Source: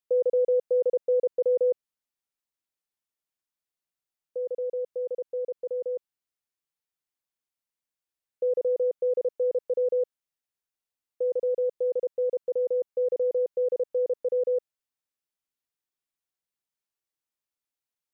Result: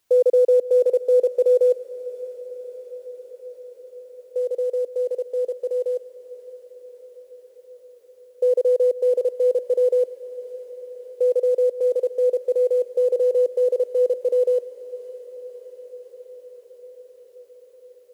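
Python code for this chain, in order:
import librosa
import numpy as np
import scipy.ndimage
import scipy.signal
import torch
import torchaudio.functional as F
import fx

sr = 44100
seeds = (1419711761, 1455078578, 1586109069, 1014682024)

p1 = fx.cvsd(x, sr, bps=64000)
p2 = scipy.signal.sosfilt(scipy.signal.butter(4, 280.0, 'highpass', fs=sr, output='sos'), p1)
p3 = fx.peak_eq(p2, sr, hz=510.0, db=7.5, octaves=1.9)
p4 = fx.quant_dither(p3, sr, seeds[0], bits=12, dither='triangular')
y = p4 + fx.echo_diffused(p4, sr, ms=612, feedback_pct=75, wet_db=-15.5, dry=0)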